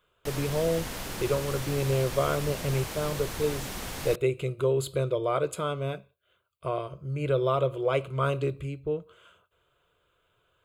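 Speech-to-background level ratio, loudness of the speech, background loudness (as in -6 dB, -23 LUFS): 6.5 dB, -29.5 LUFS, -36.0 LUFS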